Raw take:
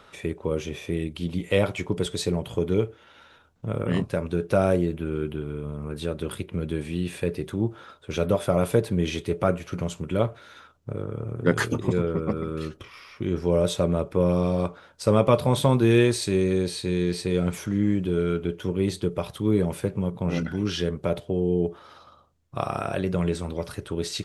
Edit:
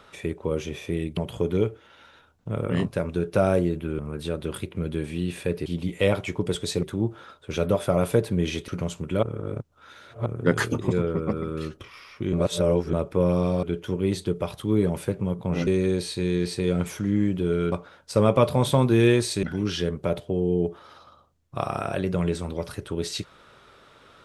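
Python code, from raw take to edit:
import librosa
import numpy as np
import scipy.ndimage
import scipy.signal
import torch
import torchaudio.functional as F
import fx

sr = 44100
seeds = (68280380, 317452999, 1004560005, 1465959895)

y = fx.edit(x, sr, fx.move(start_s=1.17, length_s=1.17, to_s=7.43),
    fx.cut(start_s=5.16, length_s=0.6),
    fx.cut(start_s=9.28, length_s=0.4),
    fx.reverse_span(start_s=10.23, length_s=1.03),
    fx.reverse_span(start_s=13.33, length_s=0.6),
    fx.swap(start_s=14.63, length_s=1.71, other_s=18.39, other_length_s=2.04), tone=tone)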